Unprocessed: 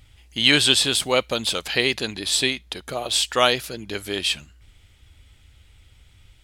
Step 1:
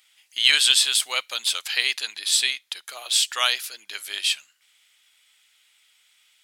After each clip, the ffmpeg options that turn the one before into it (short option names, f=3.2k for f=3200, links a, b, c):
-af "highpass=1.4k,highshelf=f=5.5k:g=5,volume=-1dB"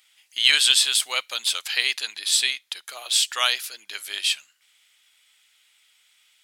-af anull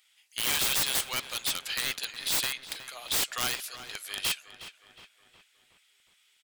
-filter_complex "[0:a]aeval=exprs='(mod(5.62*val(0)+1,2)-1)/5.62':c=same,asplit=2[a][b];[b]adelay=364,lowpass=f=3.4k:p=1,volume=-12dB,asplit=2[c][d];[d]adelay=364,lowpass=f=3.4k:p=1,volume=0.54,asplit=2[e][f];[f]adelay=364,lowpass=f=3.4k:p=1,volume=0.54,asplit=2[g][h];[h]adelay=364,lowpass=f=3.4k:p=1,volume=0.54,asplit=2[i][j];[j]adelay=364,lowpass=f=3.4k:p=1,volume=0.54,asplit=2[k][l];[l]adelay=364,lowpass=f=3.4k:p=1,volume=0.54[m];[a][c][e][g][i][k][m]amix=inputs=7:normalize=0,volume=-5.5dB"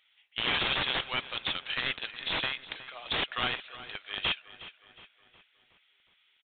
-filter_complex "[0:a]asplit=2[a][b];[b]acrusher=bits=3:mix=0:aa=0.5,volume=-5dB[c];[a][c]amix=inputs=2:normalize=0,aresample=8000,aresample=44100"